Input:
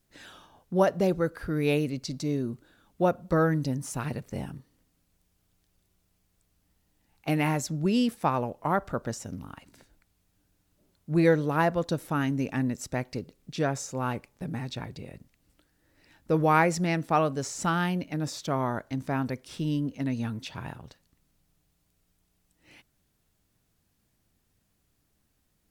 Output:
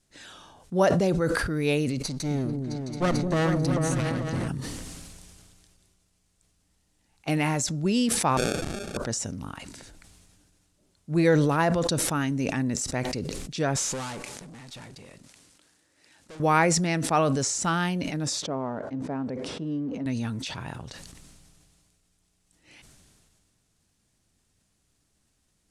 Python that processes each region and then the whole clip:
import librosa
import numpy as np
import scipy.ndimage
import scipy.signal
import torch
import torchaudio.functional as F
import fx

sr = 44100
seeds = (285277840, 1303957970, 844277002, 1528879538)

y = fx.chain(x, sr, fx.lower_of_two(delay_ms=0.48),
    fx.echo_opening(ms=221, hz=400, octaves=2, feedback_pct=70, wet_db=-3), at=(2.02, 4.48))
y = fx.chain(y, sr, fx.highpass(hz=500.0, slope=6),
    fx.auto_swell(attack_ms=317.0),
    fx.sample_hold(seeds[0], rate_hz=1000.0, jitter_pct=0), at=(8.37, 8.97))
y = fx.chain(y, sr, fx.cvsd(bps=64000),
    fx.highpass(hz=240.0, slope=6),
    fx.tube_stage(drive_db=43.0, bias=0.35), at=(13.76, 16.4))
y = fx.chain(y, sr, fx.law_mismatch(coded='mu'),
    fx.bandpass_q(hz=380.0, q=0.92),
    fx.notch(hz=350.0, q=6.5), at=(18.42, 20.06))
y = scipy.signal.sosfilt(scipy.signal.butter(4, 9500.0, 'lowpass', fs=sr, output='sos'), y)
y = fx.high_shelf(y, sr, hz=5000.0, db=9.5)
y = fx.sustainer(y, sr, db_per_s=25.0)